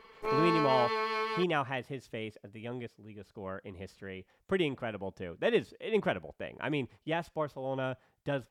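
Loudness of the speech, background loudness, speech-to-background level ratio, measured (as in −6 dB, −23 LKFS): −34.5 LKFS, −32.0 LKFS, −2.5 dB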